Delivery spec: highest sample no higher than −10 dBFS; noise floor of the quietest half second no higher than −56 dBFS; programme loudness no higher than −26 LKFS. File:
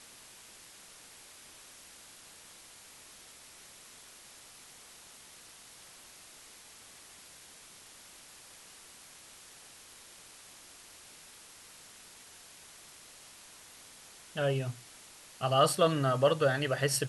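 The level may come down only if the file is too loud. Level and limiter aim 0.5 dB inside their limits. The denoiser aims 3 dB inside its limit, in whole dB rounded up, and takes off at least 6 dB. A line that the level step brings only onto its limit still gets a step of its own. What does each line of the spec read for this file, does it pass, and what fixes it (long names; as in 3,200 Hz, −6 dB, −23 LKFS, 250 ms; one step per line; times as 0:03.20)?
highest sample −12.5 dBFS: in spec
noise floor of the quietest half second −54 dBFS: out of spec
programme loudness −29.0 LKFS: in spec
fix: broadband denoise 6 dB, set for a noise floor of −54 dBFS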